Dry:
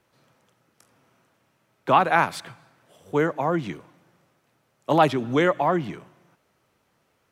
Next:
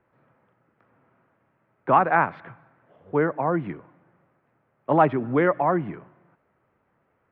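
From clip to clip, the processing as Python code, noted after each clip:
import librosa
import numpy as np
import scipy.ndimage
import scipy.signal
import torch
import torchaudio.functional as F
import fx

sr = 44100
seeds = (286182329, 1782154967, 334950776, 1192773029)

y = scipy.signal.sosfilt(scipy.signal.butter(4, 2000.0, 'lowpass', fs=sr, output='sos'), x)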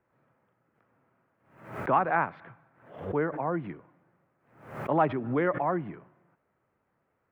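y = fx.pre_swell(x, sr, db_per_s=94.0)
y = y * 10.0 ** (-6.5 / 20.0)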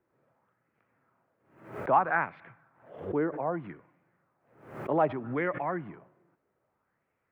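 y = fx.bell_lfo(x, sr, hz=0.63, low_hz=330.0, high_hz=2400.0, db=8)
y = y * 10.0 ** (-4.5 / 20.0)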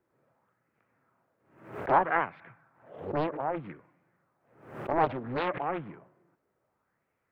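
y = fx.doppler_dist(x, sr, depth_ms=0.86)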